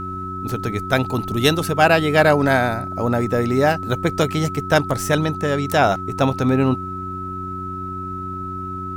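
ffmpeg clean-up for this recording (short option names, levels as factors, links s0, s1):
-af "bandreject=f=93.3:t=h:w=4,bandreject=f=186.6:t=h:w=4,bandreject=f=279.9:t=h:w=4,bandreject=f=373.2:t=h:w=4,bandreject=f=1300:w=30"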